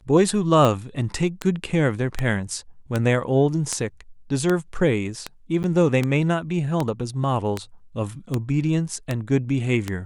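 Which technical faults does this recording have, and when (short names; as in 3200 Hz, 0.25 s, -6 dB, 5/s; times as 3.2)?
tick 78 rpm -9 dBFS
5.63–5.64 gap 9.7 ms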